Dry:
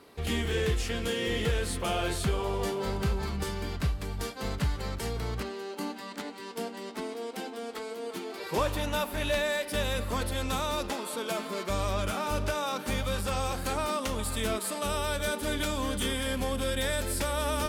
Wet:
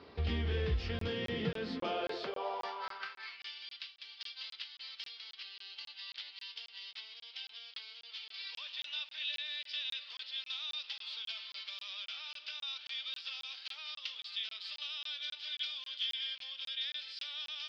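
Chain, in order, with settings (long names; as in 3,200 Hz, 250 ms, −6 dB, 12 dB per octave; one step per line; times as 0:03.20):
Chebyshev low-pass filter 5,100 Hz, order 5
mains-hum notches 50/100/150/200/250/300/350 Hz
downward compressor 2 to 1, threshold −40 dBFS, peak gain reduction 9 dB
high-pass filter sweep 63 Hz → 3,200 Hz, 0:00.79–0:03.60
regular buffer underruns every 0.27 s, samples 1,024, zero, from 0:00.99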